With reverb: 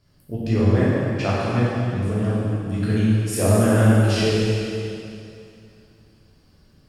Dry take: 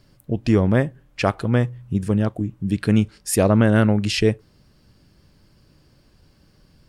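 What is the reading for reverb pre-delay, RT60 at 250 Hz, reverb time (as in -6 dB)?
5 ms, 2.7 s, 2.7 s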